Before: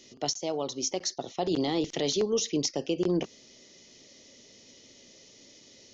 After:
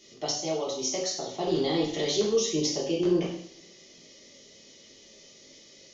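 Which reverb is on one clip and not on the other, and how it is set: two-slope reverb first 0.62 s, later 2.2 s, from -25 dB, DRR -6 dB; trim -5 dB

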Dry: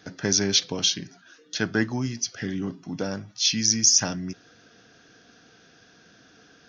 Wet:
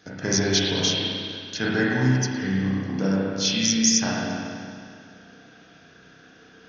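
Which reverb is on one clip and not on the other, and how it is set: spring tank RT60 2.2 s, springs 31/47 ms, chirp 75 ms, DRR -6.5 dB; trim -2.5 dB

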